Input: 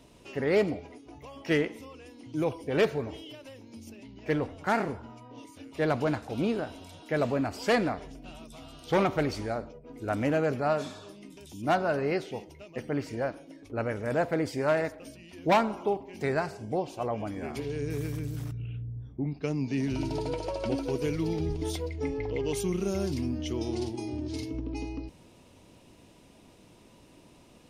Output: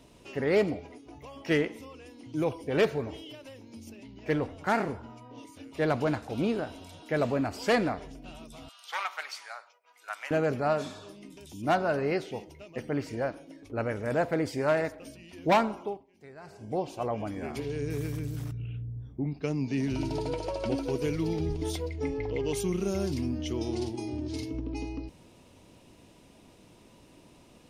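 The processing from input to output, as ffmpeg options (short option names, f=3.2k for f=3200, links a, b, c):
-filter_complex "[0:a]asettb=1/sr,asplit=3[a][b][c];[a]atrim=end=8.694[d];[b]atrim=start=8.69:end=10.31,asetpts=PTS-STARTPTS,afade=t=in:d=0.004:c=qsin,afade=t=out:st=1.616:d=0.004:c=qsin,highpass=f=1k:w=0.5412,highpass=f=1k:w=1.3066[e];[c]atrim=start=10.306[f];[d][e]acrossfade=d=0.004:c1=hsin:c2=qsin[g];[g][f]acrossfade=d=0.004:c1=qsin:c2=hsin,asplit=3[h][i][j];[h]atrim=end=16.07,asetpts=PTS-STARTPTS,afade=t=out:st=15.64:d=0.43:silence=0.0944061[k];[i]atrim=start=16.07:end=16.39,asetpts=PTS-STARTPTS,volume=-20.5dB[l];[j]atrim=start=16.39,asetpts=PTS-STARTPTS,afade=t=in:d=0.43:silence=0.0944061[m];[k][l][m]concat=n=3:v=0:a=1"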